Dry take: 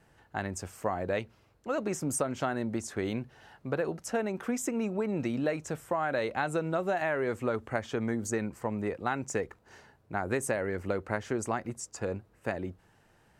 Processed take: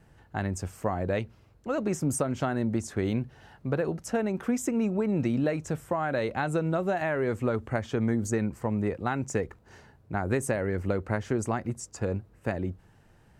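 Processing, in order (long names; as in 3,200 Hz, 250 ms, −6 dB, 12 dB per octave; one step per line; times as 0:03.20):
low-shelf EQ 240 Hz +10 dB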